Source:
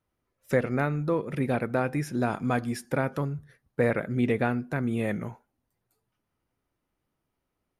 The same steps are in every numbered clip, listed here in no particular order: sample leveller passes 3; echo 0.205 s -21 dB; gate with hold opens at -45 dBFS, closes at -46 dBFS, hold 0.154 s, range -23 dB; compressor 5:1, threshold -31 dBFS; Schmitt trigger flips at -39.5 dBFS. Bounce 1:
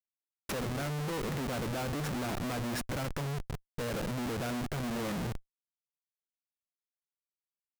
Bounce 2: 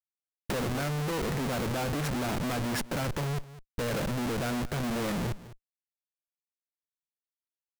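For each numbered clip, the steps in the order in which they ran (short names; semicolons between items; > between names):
sample leveller > echo > compressor > Schmitt trigger > gate with hold; Schmitt trigger > gate with hold > sample leveller > echo > compressor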